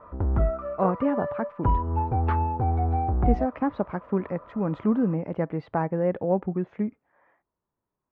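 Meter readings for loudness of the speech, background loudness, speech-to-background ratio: −28.0 LKFS, −27.0 LKFS, −1.0 dB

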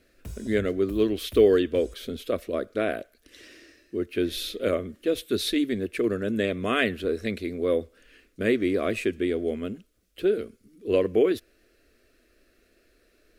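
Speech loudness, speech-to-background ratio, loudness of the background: −26.5 LKFS, 18.5 dB, −45.0 LKFS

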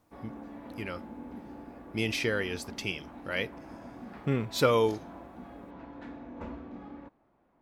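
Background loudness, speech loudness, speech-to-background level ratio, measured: −46.0 LKFS, −31.0 LKFS, 15.0 dB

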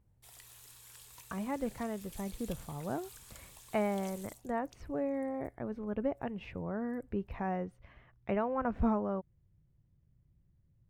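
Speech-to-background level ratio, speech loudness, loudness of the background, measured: 15.5 dB, −37.0 LKFS, −52.5 LKFS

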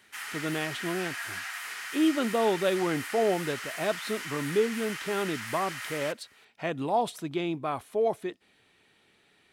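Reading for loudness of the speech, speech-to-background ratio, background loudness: −30.5 LKFS, 6.0 dB, −36.5 LKFS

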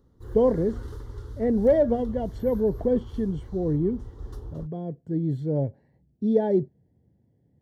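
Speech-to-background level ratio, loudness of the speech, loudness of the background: 15.0 dB, −25.5 LKFS, −40.5 LKFS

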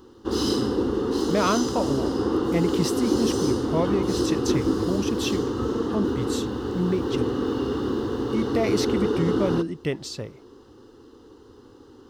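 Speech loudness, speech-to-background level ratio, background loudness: −28.5 LKFS, −3.0 dB, −25.5 LKFS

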